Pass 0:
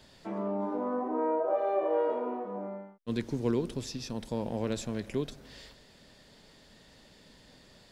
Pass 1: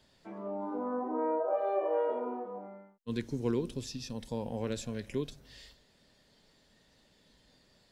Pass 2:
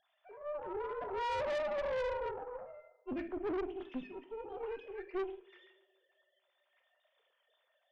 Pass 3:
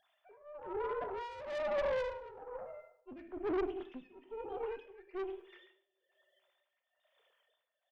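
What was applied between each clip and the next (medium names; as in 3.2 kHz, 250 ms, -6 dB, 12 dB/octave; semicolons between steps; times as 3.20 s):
spectral noise reduction 7 dB; trim -2 dB
formants replaced by sine waves; two-slope reverb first 0.47 s, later 1.6 s, DRR 3.5 dB; valve stage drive 34 dB, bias 0.65; trim +1 dB
tremolo 1.1 Hz, depth 83%; feedback delay 97 ms, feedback 40%, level -20.5 dB; trim +3 dB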